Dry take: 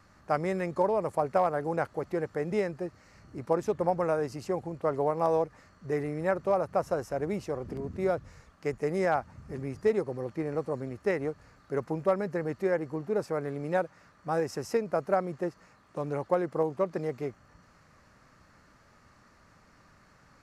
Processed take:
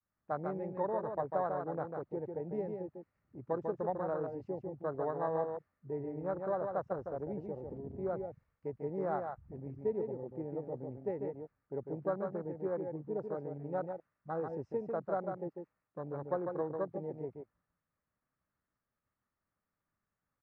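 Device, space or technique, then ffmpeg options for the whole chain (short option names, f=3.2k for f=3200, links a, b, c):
hearing-loss simulation: -af "lowpass=2.6k,agate=range=-33dB:threshold=-54dB:ratio=3:detection=peak,aecho=1:1:147:0.562,afwtdn=0.0282,volume=-8.5dB"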